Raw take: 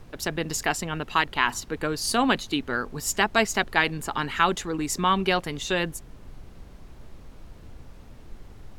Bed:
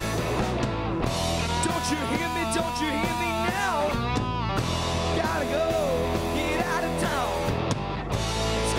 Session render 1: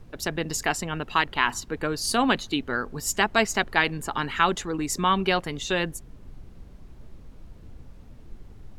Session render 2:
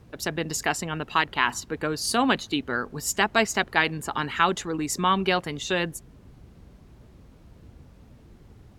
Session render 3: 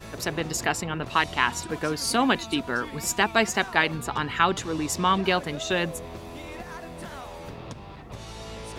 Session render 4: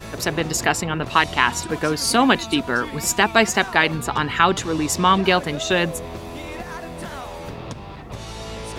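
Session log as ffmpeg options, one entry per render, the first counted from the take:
-af "afftdn=nr=6:nf=-47"
-af "highpass=56"
-filter_complex "[1:a]volume=0.224[s0];[0:a][s0]amix=inputs=2:normalize=0"
-af "volume=2,alimiter=limit=0.891:level=0:latency=1"

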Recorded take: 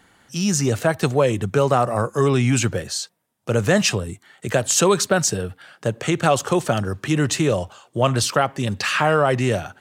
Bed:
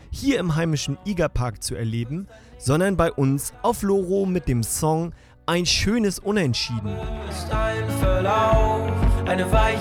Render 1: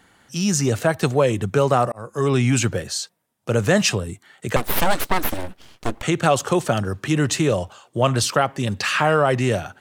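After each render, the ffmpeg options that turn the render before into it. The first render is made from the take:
-filter_complex "[0:a]asettb=1/sr,asplit=3[s0][s1][s2];[s0]atrim=end=4.564[s3];[s1]atrim=start=4.56:end=6.03,asetpts=PTS-STARTPTS,afade=t=in:d=0.004:c=qsin,afade=t=out:st=1.466:d=0.004:c=qsin,aeval=exprs='abs(val(0))':c=same[s4];[s2]atrim=start=6.026[s5];[s3][s4]acrossfade=d=0.004:c1=hsin:c2=qsin[s6];[s6][s5]acrossfade=d=0.004:c1=qsin:c2=hsin,asplit=2[s7][s8];[s7]atrim=end=1.92,asetpts=PTS-STARTPTS,afade=t=out:st=1.916:d=0.004:c=hsin[s9];[s8]atrim=start=1.92,asetpts=PTS-STARTPTS,afade=t=in:d=0.43[s10];[s9][s10]concat=n=2:v=0:a=1"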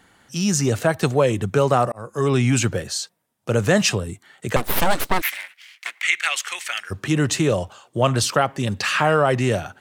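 -filter_complex "[0:a]asplit=3[s0][s1][s2];[s0]afade=t=out:st=5.2:d=0.02[s3];[s1]highpass=f=2100:t=q:w=4.4,afade=t=in:st=5.2:d=0.02,afade=t=out:st=6.9:d=0.02[s4];[s2]afade=t=in:st=6.9:d=0.02[s5];[s3][s4][s5]amix=inputs=3:normalize=0"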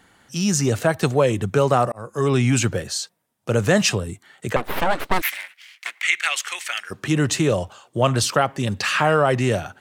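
-filter_complex "[0:a]asplit=3[s0][s1][s2];[s0]afade=t=out:st=4.52:d=0.02[s3];[s1]bass=f=250:g=-5,treble=f=4000:g=-13,afade=t=in:st=4.52:d=0.02,afade=t=out:st=5.1:d=0.02[s4];[s2]afade=t=in:st=5.1:d=0.02[s5];[s3][s4][s5]amix=inputs=3:normalize=0,asettb=1/sr,asplit=3[s6][s7][s8];[s6]atrim=end=6.194[s9];[s7]atrim=start=6.19:end=7.03,asetpts=PTS-STARTPTS,afade=t=in:d=0.004:c=qsin,afade=t=out:st=0.836:d=0.004:c=qsin,equalizer=f=90:t=o:w=1:g=-12.5[s10];[s8]atrim=start=7.026[s11];[s9][s10]acrossfade=d=0.004:c1=hsin:c2=qsin[s12];[s12][s11]acrossfade=d=0.004:c1=qsin:c2=hsin"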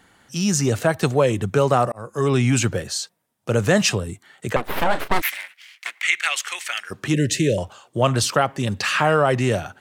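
-filter_complex "[0:a]asettb=1/sr,asplit=3[s0][s1][s2];[s0]atrim=end=4.754[s3];[s1]atrim=start=4.75:end=5.2,asetpts=PTS-STARTPTS,afade=t=in:d=0.004:c=qsin,afade=t=out:st=0.446:d=0.004:c=qsin,asplit=2[s4][s5];[s5]adelay=35,volume=0.282[s6];[s4][s6]amix=inputs=2:normalize=0,atrim=end_sample=19845[s7];[s2]atrim=start=5.196[s8];[s3][s7]acrossfade=d=0.004:c1=hsin:c2=qsin[s9];[s9][s8]acrossfade=d=0.004:c1=qsin:c2=hsin,asettb=1/sr,asplit=3[s10][s11][s12];[s10]atrim=end=7.144[s13];[s11]atrim=start=7.14:end=7.58,asetpts=PTS-STARTPTS,afade=t=in:d=0.004:c=qsin,afade=t=out:st=0.436:d=0.004:c=qsin,asuperstop=centerf=1000:order=12:qfactor=0.97[s14];[s12]atrim=start=7.576[s15];[s13][s14]acrossfade=d=0.004:c1=hsin:c2=qsin[s16];[s16][s15]acrossfade=d=0.004:c1=qsin:c2=hsin"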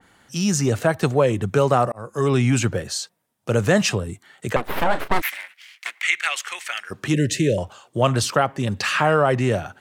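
-af "adynamicequalizer=threshold=0.0178:dfrequency=2500:dqfactor=0.7:tfrequency=2500:tqfactor=0.7:attack=5:release=100:ratio=0.375:range=3:mode=cutabove:tftype=highshelf"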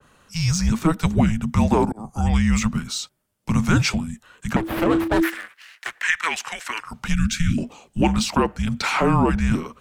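-filter_complex "[0:a]afreqshift=-330,acrossover=split=130|1800|7300[s0][s1][s2][s3];[s3]asoftclip=type=tanh:threshold=0.0178[s4];[s0][s1][s2][s4]amix=inputs=4:normalize=0"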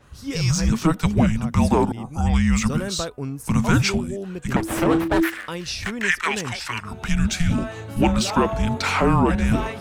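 -filter_complex "[1:a]volume=0.335[s0];[0:a][s0]amix=inputs=2:normalize=0"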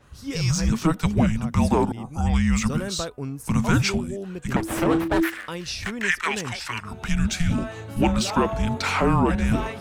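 -af "volume=0.794"

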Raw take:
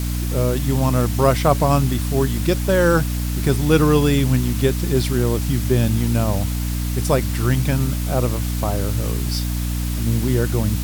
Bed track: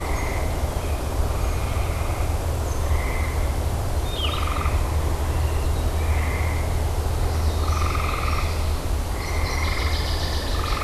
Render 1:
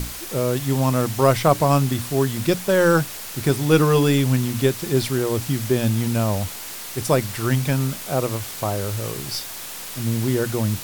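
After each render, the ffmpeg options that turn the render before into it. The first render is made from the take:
-af "bandreject=f=60:t=h:w=6,bandreject=f=120:t=h:w=6,bandreject=f=180:t=h:w=6,bandreject=f=240:t=h:w=6,bandreject=f=300:t=h:w=6"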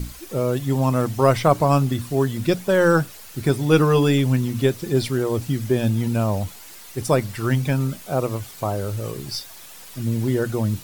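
-af "afftdn=nr=10:nf=-34"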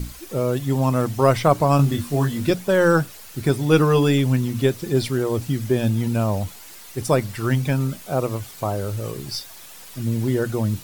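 -filter_complex "[0:a]asettb=1/sr,asplit=3[s0][s1][s2];[s0]atrim=end=1.774[s3];[s1]atrim=start=1.77:end=2.51,asetpts=PTS-STARTPTS,afade=t=in:d=0.004:c=qsin,afade=t=out:st=0.736:d=0.004:c=qsin,asplit=2[s4][s5];[s5]adelay=21,volume=0.708[s6];[s4][s6]amix=inputs=2:normalize=0,atrim=end_sample=32634[s7];[s2]atrim=start=2.506[s8];[s3][s7]acrossfade=d=0.004:c1=hsin:c2=qsin[s9];[s9][s8]acrossfade=d=0.004:c1=qsin:c2=hsin"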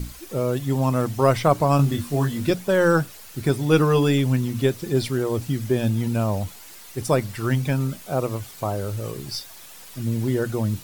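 -af "volume=0.841"

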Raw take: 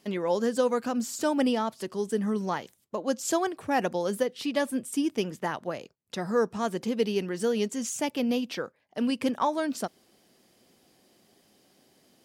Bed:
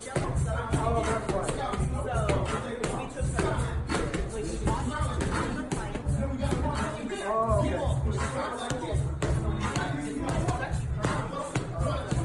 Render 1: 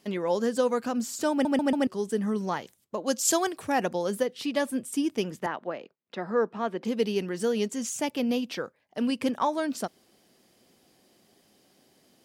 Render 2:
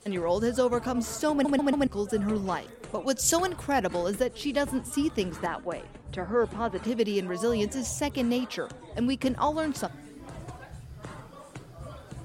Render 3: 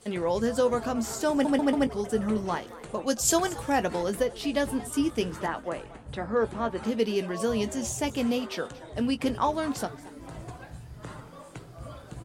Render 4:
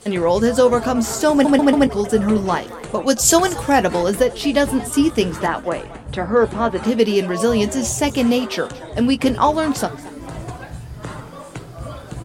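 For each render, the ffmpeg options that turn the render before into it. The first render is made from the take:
-filter_complex "[0:a]asettb=1/sr,asplit=3[s0][s1][s2];[s0]atrim=end=3.064[s3];[s1]atrim=start=3.06:end=3.72,asetpts=PTS-STARTPTS,afade=t=in:d=0.004:c=qsin,afade=t=out:st=0.656:d=0.004:c=qsin,highshelf=f=2800:g=9[s4];[s2]atrim=start=3.716[s5];[s3][s4]acrossfade=d=0.004:c1=hsin:c2=qsin[s6];[s6][s5]acrossfade=d=0.004:c1=qsin:c2=hsin,asettb=1/sr,asplit=3[s7][s8][s9];[s7]atrim=end=5.464[s10];[s8]atrim=start=5.46:end=6.85,asetpts=PTS-STARTPTS,afade=t=in:d=0.004:c=qsin,afade=t=out:st=1.386:d=0.004:c=qsin,acrossover=split=180 3600:gain=0.0794 1 0.0708[s11][s12][s13];[s11][s12][s13]amix=inputs=3:normalize=0[s14];[s9]atrim=start=6.846[s15];[s10][s14]acrossfade=d=0.004:c1=hsin:c2=qsin[s16];[s16][s15]acrossfade=d=0.004:c1=qsin:c2=hsin,asplit=5[s17][s18][s19][s20][s21];[s17]atrim=end=1.452[s22];[s18]atrim=start=1.308:end=1.452[s23];[s19]atrim=start=1.308:end=1.452[s24];[s20]atrim=start=1.308:end=1.452[s25];[s21]atrim=start=1.868[s26];[s22][s23]acrossfade=d=0.004:c1=hsin:c2=hsin[s27];[s27][s24]acrossfade=d=0.004:c1=hsin:c2=hsin[s28];[s28][s25]acrossfade=d=0.004:c1=hsin:c2=hsin[s29];[s29][s26]acrossfade=d=0.004:c1=hsin:c2=hsin"
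-filter_complex "[1:a]volume=0.211[s0];[0:a][s0]amix=inputs=2:normalize=0"
-filter_complex "[0:a]asplit=2[s0][s1];[s1]adelay=18,volume=0.282[s2];[s0][s2]amix=inputs=2:normalize=0,asplit=4[s3][s4][s5][s6];[s4]adelay=229,afreqshift=150,volume=0.119[s7];[s5]adelay=458,afreqshift=300,volume=0.038[s8];[s6]adelay=687,afreqshift=450,volume=0.0122[s9];[s3][s7][s8][s9]amix=inputs=4:normalize=0"
-af "volume=3.35,alimiter=limit=0.891:level=0:latency=1"

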